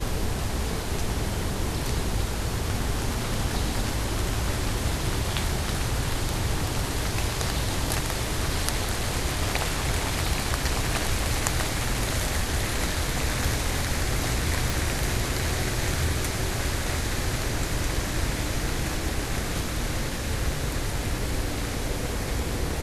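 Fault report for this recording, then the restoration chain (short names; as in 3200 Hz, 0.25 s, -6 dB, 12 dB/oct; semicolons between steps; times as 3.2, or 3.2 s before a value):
14.7 pop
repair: de-click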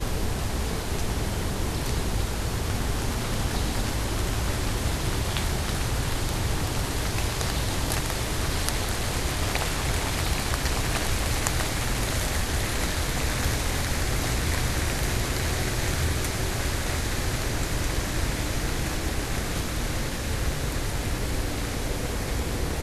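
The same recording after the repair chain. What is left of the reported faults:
none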